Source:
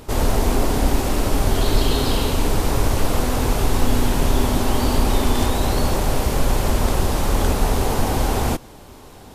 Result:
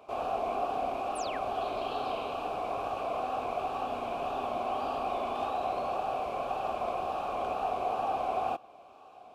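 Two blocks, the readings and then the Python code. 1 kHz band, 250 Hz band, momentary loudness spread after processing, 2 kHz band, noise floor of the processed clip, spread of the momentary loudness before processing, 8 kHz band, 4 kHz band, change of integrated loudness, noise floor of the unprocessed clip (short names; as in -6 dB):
-4.0 dB, -21.0 dB, 3 LU, -14.5 dB, -53 dBFS, 2 LU, under -25 dB, -18.5 dB, -12.0 dB, -42 dBFS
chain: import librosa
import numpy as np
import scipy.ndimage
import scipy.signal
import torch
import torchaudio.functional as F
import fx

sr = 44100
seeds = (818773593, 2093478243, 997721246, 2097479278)

y = fx.dynamic_eq(x, sr, hz=6700.0, q=0.89, threshold_db=-45.0, ratio=4.0, max_db=-4)
y = fx.vowel_filter(y, sr, vowel='a')
y = fx.wow_flutter(y, sr, seeds[0], rate_hz=2.1, depth_cents=50.0)
y = fx.spec_paint(y, sr, seeds[1], shape='fall', start_s=1.15, length_s=0.26, low_hz=1100.0, high_hz=11000.0, level_db=-46.0)
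y = F.gain(torch.from_numpy(y), 1.5).numpy()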